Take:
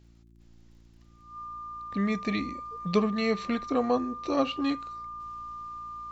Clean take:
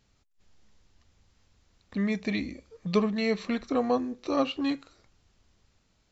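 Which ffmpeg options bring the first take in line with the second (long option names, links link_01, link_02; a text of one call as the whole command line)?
ffmpeg -i in.wav -af "adeclick=threshold=4,bandreject=frequency=57.2:width_type=h:width=4,bandreject=frequency=114.4:width_type=h:width=4,bandreject=frequency=171.6:width_type=h:width=4,bandreject=frequency=228.8:width_type=h:width=4,bandreject=frequency=286:width_type=h:width=4,bandreject=frequency=343.2:width_type=h:width=4,bandreject=frequency=1200:width=30,asetnsamples=nb_out_samples=441:pad=0,asendcmd='5.2 volume volume -5.5dB',volume=0dB" out.wav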